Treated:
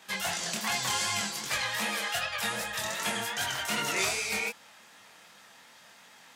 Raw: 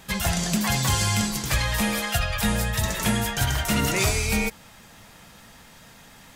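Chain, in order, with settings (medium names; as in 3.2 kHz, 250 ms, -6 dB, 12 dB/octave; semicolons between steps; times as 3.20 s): chorus 2.6 Hz, delay 20 ms, depth 6.5 ms; frequency weighting A; trim -1.5 dB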